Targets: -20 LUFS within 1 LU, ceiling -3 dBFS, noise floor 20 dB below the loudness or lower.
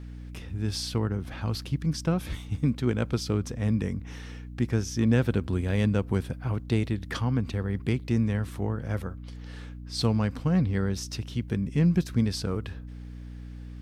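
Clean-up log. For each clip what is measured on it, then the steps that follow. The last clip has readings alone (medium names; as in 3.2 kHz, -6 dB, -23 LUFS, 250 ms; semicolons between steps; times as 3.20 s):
hum 60 Hz; highest harmonic 300 Hz; hum level -39 dBFS; loudness -28.5 LUFS; peak level -11.5 dBFS; loudness target -20.0 LUFS
-> hum notches 60/120/180/240/300 Hz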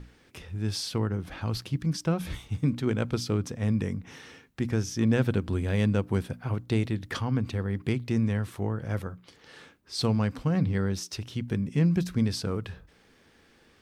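hum not found; loudness -29.0 LUFS; peak level -11.0 dBFS; loudness target -20.0 LUFS
-> trim +9 dB; peak limiter -3 dBFS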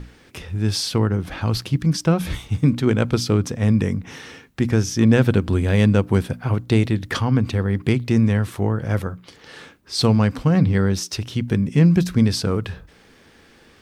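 loudness -20.0 LUFS; peak level -3.0 dBFS; noise floor -52 dBFS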